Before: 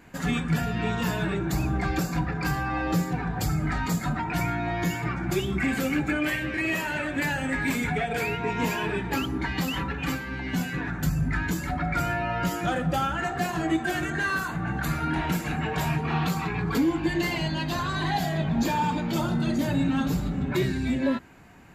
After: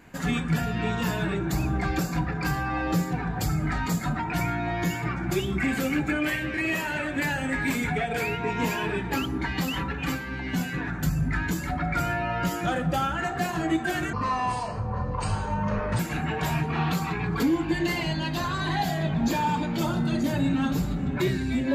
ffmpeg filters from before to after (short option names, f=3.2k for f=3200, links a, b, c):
-filter_complex "[0:a]asplit=3[a][b][c];[a]atrim=end=14.134[d];[b]atrim=start=14.13:end=15.34,asetpts=PTS-STARTPTS,asetrate=28665,aresample=44100[e];[c]atrim=start=15.336[f];[d][e]acrossfade=d=0.004:c1=hsin:c2=hsin[g];[g][f]acrossfade=d=0.004:c1=hsin:c2=hsin"